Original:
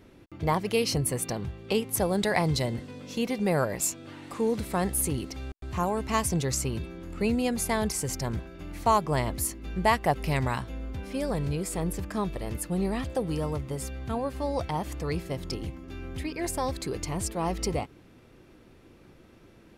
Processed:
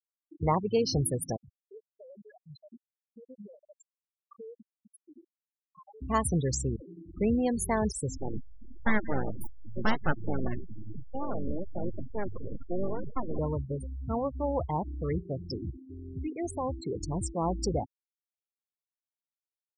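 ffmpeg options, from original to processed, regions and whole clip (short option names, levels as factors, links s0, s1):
-filter_complex "[0:a]asettb=1/sr,asplit=3[s0][s1][s2];[s0]atrim=end=1.364[s3];[s1]atrim=start=1.36:end=6.02,asetpts=PTS-STARTPTS,afade=t=in:d=0.004:c=qsin,afade=t=out:st=4.656:d=0.004:c=qsin,highpass=f=580:p=1,acompressor=threshold=0.0112:ratio=16:attack=3.2:release=140:knee=1:detection=peak[s4];[s2]atrim=start=6.016[s5];[s3][s4]acrossfade=d=0.004:c1=hsin:c2=qsin[s6];[s6][s5]acrossfade=d=0.004:c1=qsin:c2=hsin,asettb=1/sr,asplit=3[s7][s8][s9];[s7]atrim=end=6.764[s10];[s8]atrim=start=6.76:end=7.17,asetpts=PTS-STARTPTS,afade=t=in:d=0.004:c=qsin,afade=t=out:st=0.406:d=0.004:c=qsin,highpass=f=80:p=1,aeval=exprs='(mod(47.3*val(0)+1,2)-1)/47.3':c=same[s11];[s9]atrim=start=7.166[s12];[s10][s11]acrossfade=d=0.004:c1=hsin:c2=qsin[s13];[s13][s12]acrossfade=d=0.004:c1=qsin:c2=hsin,asettb=1/sr,asplit=3[s14][s15][s16];[s14]atrim=end=8.174[s17];[s15]atrim=start=8.17:end=13.39,asetpts=PTS-STARTPTS,afade=t=in:d=0.004:c=qsin,afade=t=out:st=5.216:d=0.004:c=qsin,aeval=exprs='abs(val(0))':c=same,aecho=1:1:173:0.15,atrim=end_sample=230202[s18];[s16]atrim=start=13.386[s19];[s17][s18]acrossfade=d=0.004:c1=hsin:c2=qsin[s20];[s20][s19]acrossfade=d=0.004:c1=qsin:c2=hsin,asettb=1/sr,asplit=3[s21][s22][s23];[s21]atrim=end=15.184[s24];[s22]atrim=start=15.18:end=17,asetpts=PTS-STARTPTS,afade=t=in:d=0.004:c=qsin,afade=t=out:st=1.816:d=0.004:c=qsin,highpass=f=58:w=0.5412,highpass=f=58:w=1.3066,asoftclip=type=hard:threshold=0.0447[s25];[s23]atrim=start=16.996[s26];[s24][s25]acrossfade=d=0.004:c1=hsin:c2=qsin[s27];[s27][s26]acrossfade=d=0.004:c1=qsin:c2=hsin,adynamicequalizer=threshold=0.00447:dfrequency=9000:dqfactor=2:tfrequency=9000:tqfactor=2:attack=5:release=100:ratio=0.375:range=1.5:mode=cutabove:tftype=bell,afftfilt=real='re*gte(hypot(re,im),0.0501)':imag='im*gte(hypot(re,im),0.0501)':win_size=1024:overlap=0.75,equalizer=f=2600:w=3.1:g=-13"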